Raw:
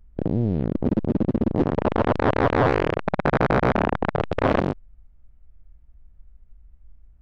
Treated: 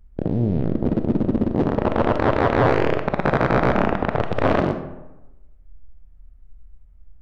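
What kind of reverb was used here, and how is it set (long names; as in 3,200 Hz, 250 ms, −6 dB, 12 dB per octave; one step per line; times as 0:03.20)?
comb and all-pass reverb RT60 1 s, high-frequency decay 0.55×, pre-delay 5 ms, DRR 7 dB
level +1 dB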